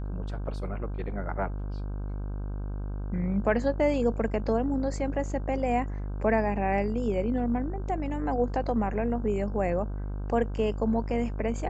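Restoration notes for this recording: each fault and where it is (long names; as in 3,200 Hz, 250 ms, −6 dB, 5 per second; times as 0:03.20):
mains buzz 50 Hz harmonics 32 −33 dBFS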